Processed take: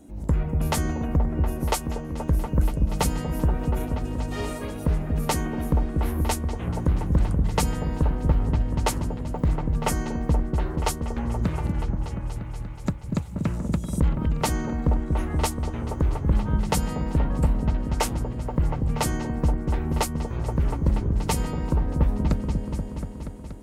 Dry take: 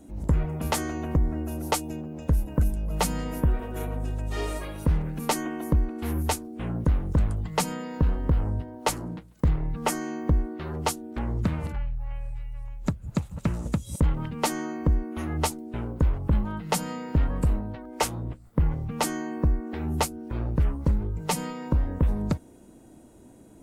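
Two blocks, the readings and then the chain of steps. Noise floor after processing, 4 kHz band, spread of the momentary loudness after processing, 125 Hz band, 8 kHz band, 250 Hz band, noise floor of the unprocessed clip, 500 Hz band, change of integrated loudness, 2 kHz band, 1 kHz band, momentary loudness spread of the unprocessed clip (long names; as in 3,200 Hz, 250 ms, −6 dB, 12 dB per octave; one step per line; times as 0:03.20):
−35 dBFS, +0.5 dB, 6 LU, +3.0 dB, 0.0 dB, +2.5 dB, −51 dBFS, +2.0 dB, +2.0 dB, +0.5 dB, +1.0 dB, 7 LU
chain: echo whose low-pass opens from repeat to repeat 239 ms, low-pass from 400 Hz, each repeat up 1 octave, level −3 dB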